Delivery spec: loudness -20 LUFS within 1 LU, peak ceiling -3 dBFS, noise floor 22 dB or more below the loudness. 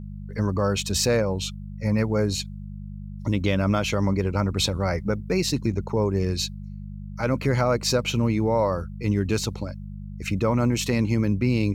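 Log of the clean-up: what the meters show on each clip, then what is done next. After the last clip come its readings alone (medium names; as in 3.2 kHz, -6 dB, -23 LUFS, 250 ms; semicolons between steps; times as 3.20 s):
hum 50 Hz; highest harmonic 200 Hz; hum level -33 dBFS; loudness -24.5 LUFS; peak level -9.0 dBFS; loudness target -20.0 LUFS
-> de-hum 50 Hz, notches 4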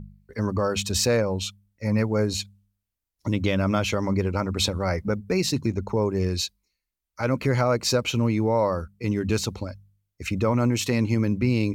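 hum not found; loudness -25.0 LUFS; peak level -9.0 dBFS; loudness target -20.0 LUFS
-> trim +5 dB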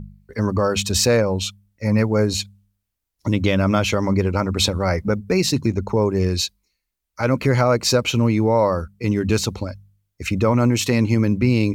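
loudness -20.0 LUFS; peak level -4.0 dBFS; noise floor -79 dBFS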